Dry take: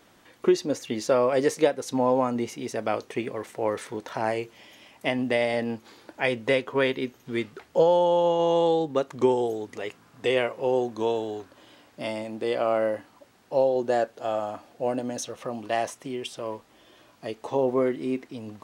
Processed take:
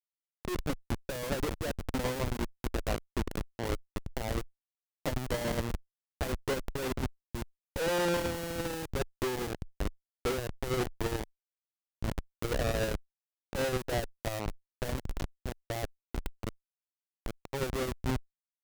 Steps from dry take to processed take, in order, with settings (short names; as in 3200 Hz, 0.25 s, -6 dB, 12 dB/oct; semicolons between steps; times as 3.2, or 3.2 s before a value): band-limited delay 0.416 s, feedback 77%, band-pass 1300 Hz, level -14 dB; Schmitt trigger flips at -24 dBFS; added harmonics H 2 -17 dB, 6 -13 dB, 8 -12 dB, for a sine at -20.5 dBFS; gain -4.5 dB